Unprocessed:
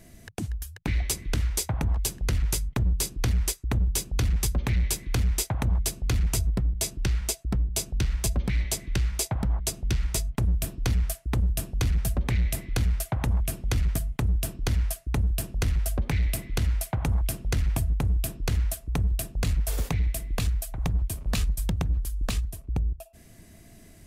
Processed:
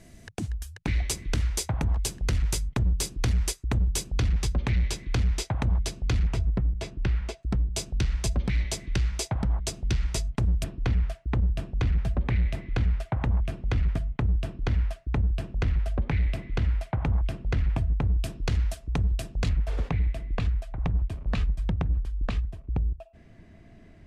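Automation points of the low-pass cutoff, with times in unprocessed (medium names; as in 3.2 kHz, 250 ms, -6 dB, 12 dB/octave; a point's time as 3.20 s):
8.9 kHz
from 4.14 s 5.3 kHz
from 6.27 s 2.6 kHz
from 7.43 s 6.6 kHz
from 10.64 s 2.7 kHz
from 18.21 s 5.5 kHz
from 19.49 s 2.5 kHz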